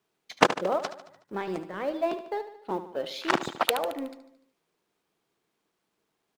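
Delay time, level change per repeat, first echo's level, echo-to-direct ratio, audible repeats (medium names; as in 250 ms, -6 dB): 74 ms, -5.0 dB, -12.0 dB, -10.5 dB, 5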